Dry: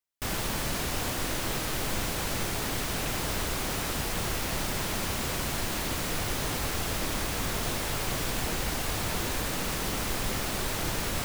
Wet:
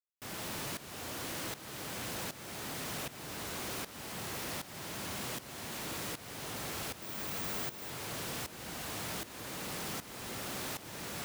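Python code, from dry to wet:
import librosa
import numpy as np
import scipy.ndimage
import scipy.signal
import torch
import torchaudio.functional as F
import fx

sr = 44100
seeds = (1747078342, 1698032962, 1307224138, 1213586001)

y = scipy.signal.sosfilt(scipy.signal.butter(2, 110.0, 'highpass', fs=sr, output='sos'), x)
y = y + 10.0 ** (-5.5 / 20.0) * np.pad(y, (int(166 * sr / 1000.0), 0))[:len(y)]
y = fx.tremolo_shape(y, sr, shape='saw_up', hz=1.3, depth_pct=90)
y = np.clip(10.0 ** (34.0 / 20.0) * y, -1.0, 1.0) / 10.0 ** (34.0 / 20.0)
y = fx.resample_bad(y, sr, factor=2, down='filtered', up='zero_stuff', at=(7.02, 7.9))
y = y * 10.0 ** (-3.0 / 20.0)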